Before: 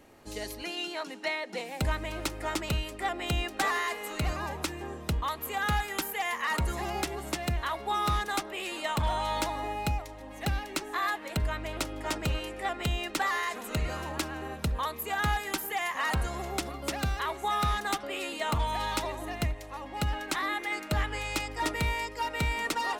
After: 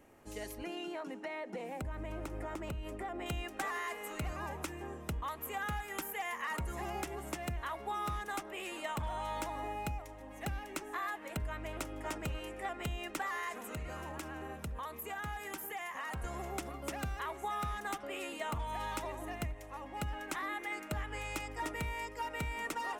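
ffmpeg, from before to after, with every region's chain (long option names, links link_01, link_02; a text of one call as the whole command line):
ffmpeg -i in.wav -filter_complex "[0:a]asettb=1/sr,asplit=3[link_01][link_02][link_03];[link_01]atrim=end=0.584[link_04];[link_02]atrim=start=0.58:end=3.26,asetpts=PTS-STARTPTS,afade=type=in:duration=0.004:curve=qsin,afade=type=out:start_time=2.676:duration=0.004:curve=qsin,tiltshelf=frequency=1400:gain=5.5,acompressor=threshold=-31dB:ratio=6:attack=3.2:release=140:knee=1:detection=peak[link_05];[link_03]atrim=start=3.256[link_06];[link_04][link_05]acrossfade=duration=0.004:curve1=hsin:curve2=qsin[link_07];[link_07][link_06]acrossfade=duration=0.004:curve1=qsin:curve2=hsin,asettb=1/sr,asplit=3[link_08][link_09][link_10];[link_08]atrim=end=13.554[link_11];[link_09]atrim=start=13.55:end=16.24,asetpts=PTS-STARTPTS,afade=type=in:duration=0.004:curve=qsin,afade=type=out:start_time=2.686:duration=0.004:curve=qsin,highpass=45,acompressor=threshold=-34dB:ratio=2.5:attack=3.2:release=140:knee=1:detection=peak[link_12];[link_10]atrim=start=16.236[link_13];[link_11][link_12]acrossfade=duration=0.004:curve1=hsin:curve2=qsin[link_14];[link_14][link_13]acrossfade=duration=0.004:curve1=qsin:curve2=hsin,equalizer=frequency=4200:width_type=o:width=0.68:gain=-9,acompressor=threshold=-29dB:ratio=6,volume=-5dB" out.wav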